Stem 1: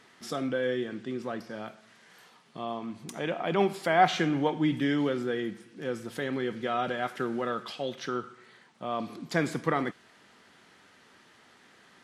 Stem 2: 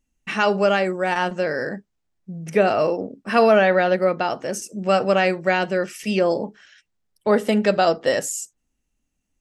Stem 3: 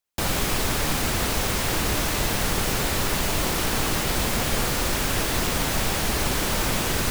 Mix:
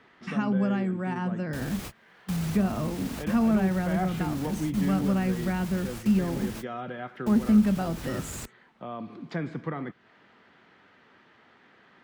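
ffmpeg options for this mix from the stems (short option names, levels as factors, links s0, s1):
-filter_complex "[0:a]lowpass=2700,volume=1.12[s0];[1:a]equalizer=f=125:t=o:w=1:g=11,equalizer=f=250:t=o:w=1:g=11,equalizer=f=500:t=o:w=1:g=-8,equalizer=f=1000:t=o:w=1:g=6,equalizer=f=4000:t=o:w=1:g=-6,volume=0.501,asplit=2[s1][s2];[2:a]alimiter=limit=0.0794:level=0:latency=1,adelay=1350,volume=0.708[s3];[s2]apad=whole_len=372836[s4];[s3][s4]sidechaingate=range=0.00794:threshold=0.00891:ratio=16:detection=peak[s5];[s0][s1][s5]amix=inputs=3:normalize=0,acrossover=split=230[s6][s7];[s7]acompressor=threshold=0.01:ratio=2[s8];[s6][s8]amix=inputs=2:normalize=0,highpass=42"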